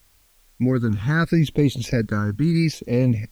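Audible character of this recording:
phaser sweep stages 8, 0.76 Hz, lowest notch 620–1,600 Hz
a quantiser's noise floor 10 bits, dither triangular

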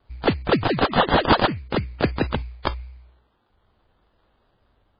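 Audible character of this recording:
a quantiser's noise floor 12 bits, dither triangular
phaser sweep stages 2, 0.65 Hz, lowest notch 210–3,100 Hz
aliases and images of a low sample rate 2,300 Hz, jitter 20%
MP3

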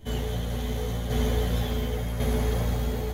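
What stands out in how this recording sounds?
tremolo saw down 0.91 Hz, depth 55%
a shimmering, thickened sound

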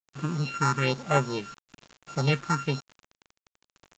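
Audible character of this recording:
a buzz of ramps at a fixed pitch in blocks of 32 samples
phaser sweep stages 4, 1.1 Hz, lowest notch 520–4,700 Hz
a quantiser's noise floor 8 bits, dither none
mu-law

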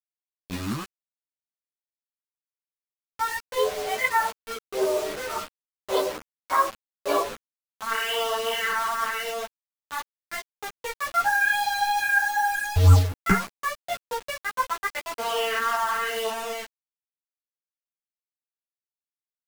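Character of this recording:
phaser sweep stages 4, 0.87 Hz, lowest notch 440–2,000 Hz
a quantiser's noise floor 6 bits, dither none
a shimmering, thickened sound

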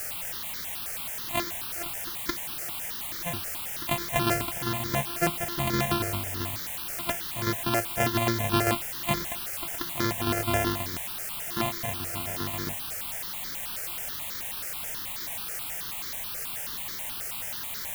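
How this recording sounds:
a buzz of ramps at a fixed pitch in blocks of 128 samples
tremolo saw down 7.5 Hz, depth 55%
a quantiser's noise floor 6 bits, dither triangular
notches that jump at a steady rate 9.3 Hz 990–2,700 Hz

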